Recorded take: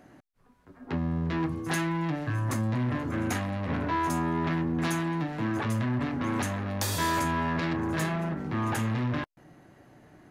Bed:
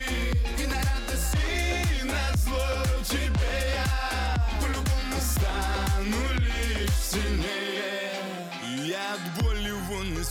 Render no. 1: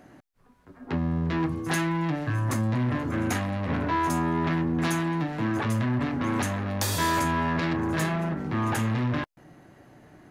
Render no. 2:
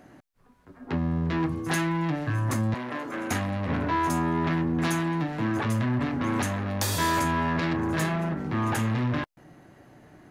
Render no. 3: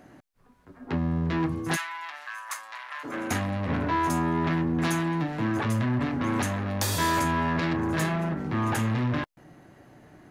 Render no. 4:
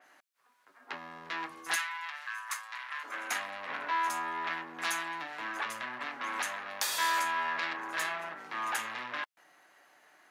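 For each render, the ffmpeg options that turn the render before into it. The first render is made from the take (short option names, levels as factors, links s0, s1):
-af "volume=1.33"
-filter_complex "[0:a]asettb=1/sr,asplit=3[s0][s1][s2];[s0]atrim=end=2.744[s3];[s1]atrim=start=2.74:end=3.31,asetpts=PTS-STARTPTS,afade=t=in:d=0.004:c=qsin,afade=t=out:st=0.566:d=0.004:c=qsin,highpass=380[s4];[s2]atrim=start=3.306[s5];[s3][s4]acrossfade=d=0.004:c1=hsin:c2=qsin[s6];[s6][s5]acrossfade=d=0.004:c1=qsin:c2=hsin"
-filter_complex "[0:a]asplit=3[s0][s1][s2];[s0]afade=t=out:st=1.75:d=0.02[s3];[s1]highpass=f=990:w=0.5412,highpass=f=990:w=1.3066,afade=t=in:st=1.75:d=0.02,afade=t=out:st=3.03:d=0.02[s4];[s2]afade=t=in:st=3.03:d=0.02[s5];[s3][s4][s5]amix=inputs=3:normalize=0"
-af "highpass=1100,adynamicequalizer=threshold=0.00398:dfrequency=4400:dqfactor=0.7:tfrequency=4400:tqfactor=0.7:attack=5:release=100:ratio=0.375:range=2.5:mode=cutabove:tftype=highshelf"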